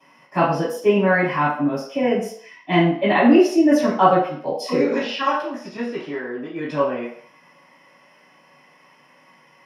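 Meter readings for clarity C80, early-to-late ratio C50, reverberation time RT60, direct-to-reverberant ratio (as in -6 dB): 8.5 dB, 4.5 dB, 0.60 s, -16.5 dB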